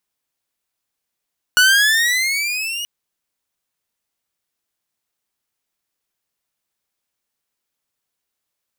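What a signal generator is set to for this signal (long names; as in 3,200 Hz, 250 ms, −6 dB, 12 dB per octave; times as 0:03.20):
pitch glide with a swell saw, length 1.28 s, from 1,460 Hz, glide +12 semitones, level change −14.5 dB, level −6 dB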